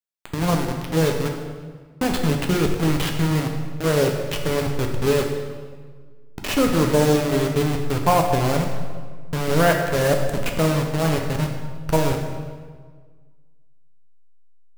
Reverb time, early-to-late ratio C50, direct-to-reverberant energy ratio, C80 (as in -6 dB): 1.6 s, 5.0 dB, 2.0 dB, 6.5 dB